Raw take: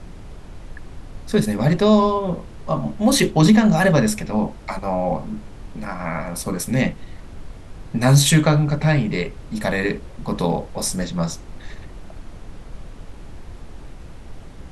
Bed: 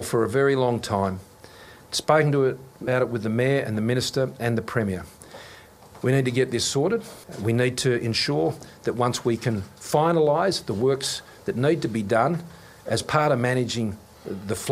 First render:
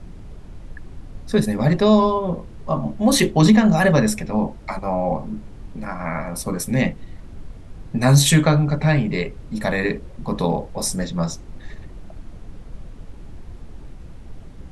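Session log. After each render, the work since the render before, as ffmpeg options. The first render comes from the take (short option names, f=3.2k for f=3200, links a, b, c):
-af "afftdn=nr=6:nf=-39"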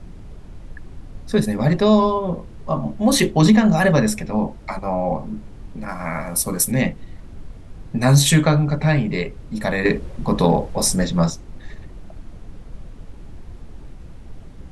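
-filter_complex "[0:a]asettb=1/sr,asplit=3[a][b][c];[a]atrim=end=5.884[d];[b]atrim=start=5.88:end=6.72,asetpts=PTS-STARTPTS,afade=t=in:d=0.004:c=qsin,afade=t=out:st=0.836:d=0.004:c=qsin,aemphasis=mode=production:type=50fm[e];[c]atrim=start=6.716[f];[d][e]acrossfade=d=0.004:c1=hsin:c2=qsin[g];[g][f]acrossfade=d=0.004:c1=qsin:c2=hsin,asettb=1/sr,asplit=3[h][i][j];[h]atrim=end=9.854[k];[i]atrim=start=9.85:end=11.3,asetpts=PTS-STARTPTS,afade=t=in:d=0.004:c=qsin,afade=t=out:st=1.446:d=0.004:c=qsin,acontrast=30[l];[j]atrim=start=11.296[m];[k][l]acrossfade=d=0.004:c1=hsin:c2=qsin[n];[n][m]acrossfade=d=0.004:c1=qsin:c2=hsin"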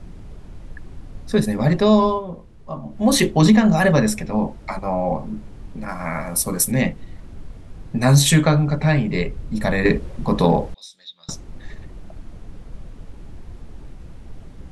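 -filter_complex "[0:a]asettb=1/sr,asplit=3[a][b][c];[a]atrim=end=9.154[d];[b]atrim=start=9.15:end=9.98,asetpts=PTS-STARTPTS,afade=t=in:d=0.004:c=qsin,afade=t=out:st=0.826:d=0.004:c=qsin,lowshelf=f=150:g=7[e];[c]atrim=start=9.976[f];[d][e]acrossfade=d=0.004:c1=hsin:c2=qsin[g];[g][f]acrossfade=d=0.004:c1=qsin:c2=hsin,asettb=1/sr,asplit=3[h][i][j];[h]atrim=end=10.744[k];[i]atrim=start=10.74:end=11.29,asetpts=PTS-STARTPTS,afade=t=in:d=0.004:c=qsin,afade=t=out:st=0.546:d=0.004:c=qsin,bandpass=f=3.7k:t=q:w=14[l];[j]atrim=start=11.286[m];[k][l]acrossfade=d=0.004:c1=hsin:c2=qsin[n];[n][m]acrossfade=d=0.004:c1=qsin:c2=hsin,asplit=3[o][p][q];[o]atrim=end=2.25,asetpts=PTS-STARTPTS,afade=t=out:st=2.12:d=0.13:silence=0.375837[r];[p]atrim=start=2.25:end=2.9,asetpts=PTS-STARTPTS,volume=-8.5dB[s];[q]atrim=start=2.9,asetpts=PTS-STARTPTS,afade=t=in:d=0.13:silence=0.375837[t];[r][s][t]concat=n=3:v=0:a=1"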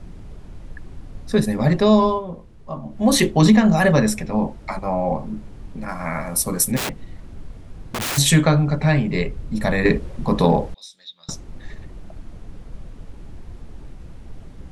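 -filter_complex "[0:a]asplit=3[a][b][c];[a]afade=t=out:st=6.76:d=0.02[d];[b]aeval=exprs='(mod(10*val(0)+1,2)-1)/10':c=same,afade=t=in:st=6.76:d=0.02,afade=t=out:st=8.17:d=0.02[e];[c]afade=t=in:st=8.17:d=0.02[f];[d][e][f]amix=inputs=3:normalize=0"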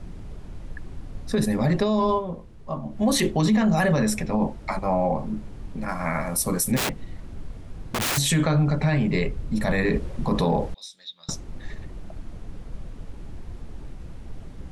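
-af "alimiter=limit=-13.5dB:level=0:latency=1:release=32"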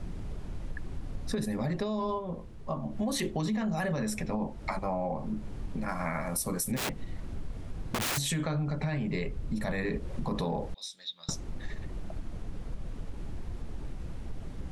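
-af "acompressor=threshold=-30dB:ratio=4"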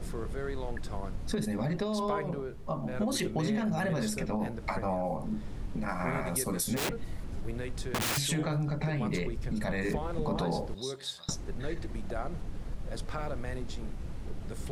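-filter_complex "[1:a]volume=-17.5dB[a];[0:a][a]amix=inputs=2:normalize=0"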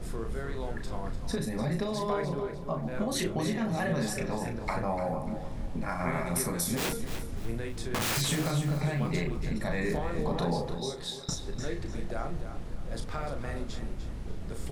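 -filter_complex "[0:a]asplit=2[a][b];[b]adelay=35,volume=-6dB[c];[a][c]amix=inputs=2:normalize=0,aecho=1:1:297|594|891|1188:0.316|0.101|0.0324|0.0104"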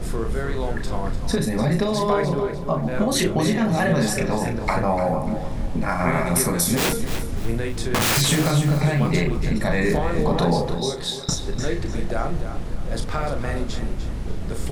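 -af "volume=10dB"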